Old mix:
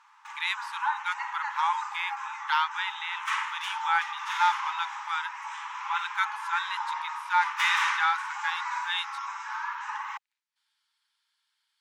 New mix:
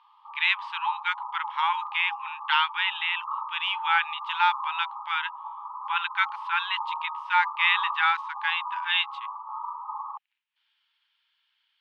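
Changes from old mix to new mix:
background: add linear-phase brick-wall low-pass 1,300 Hz
master: add low-pass with resonance 2,900 Hz, resonance Q 3.6

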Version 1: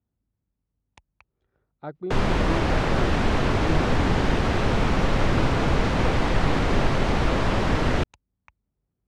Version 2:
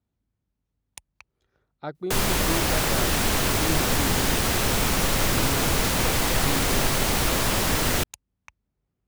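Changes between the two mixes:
background −4.0 dB
master: remove head-to-tape spacing loss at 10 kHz 30 dB

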